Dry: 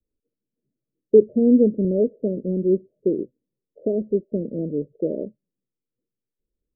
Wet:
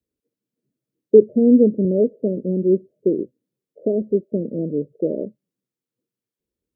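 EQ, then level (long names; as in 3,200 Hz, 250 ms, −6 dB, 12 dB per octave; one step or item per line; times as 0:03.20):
high-pass filter 89 Hz
+2.5 dB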